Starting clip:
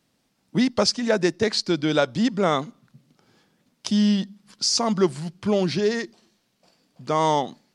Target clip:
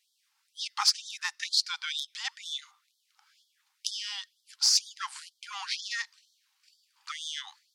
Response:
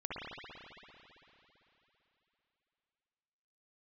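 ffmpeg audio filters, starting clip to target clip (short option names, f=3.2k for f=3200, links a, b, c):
-af "aeval=exprs='0.562*(cos(1*acos(clip(val(0)/0.562,-1,1)))-cos(1*PI/2))+0.0708*(cos(3*acos(clip(val(0)/0.562,-1,1)))-cos(3*PI/2))+0.0316*(cos(4*acos(clip(val(0)/0.562,-1,1)))-cos(4*PI/2))+0.0398*(cos(5*acos(clip(val(0)/0.562,-1,1)))-cos(5*PI/2))':c=same,afftfilt=real='re*gte(b*sr/1024,740*pow(3200/740,0.5+0.5*sin(2*PI*2.1*pts/sr)))':imag='im*gte(b*sr/1024,740*pow(3200/740,0.5+0.5*sin(2*PI*2.1*pts/sr)))':win_size=1024:overlap=0.75"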